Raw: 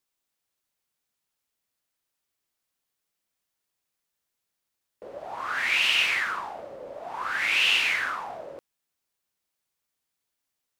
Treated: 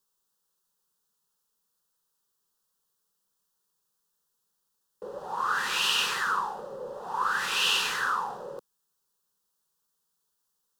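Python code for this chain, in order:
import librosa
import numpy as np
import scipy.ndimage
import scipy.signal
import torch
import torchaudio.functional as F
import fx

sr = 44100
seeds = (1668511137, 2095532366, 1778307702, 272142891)

y = fx.fixed_phaser(x, sr, hz=440.0, stages=8)
y = y * librosa.db_to_amplitude(5.5)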